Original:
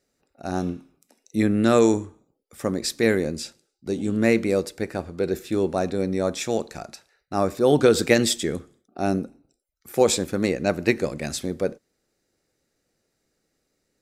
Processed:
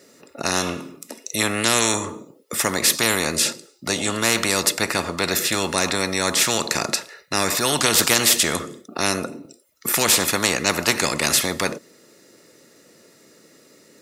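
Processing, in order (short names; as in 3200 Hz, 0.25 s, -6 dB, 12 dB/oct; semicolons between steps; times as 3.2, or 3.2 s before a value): HPF 170 Hz 12 dB/oct; notch comb 780 Hz; spectral compressor 4:1; gain +2.5 dB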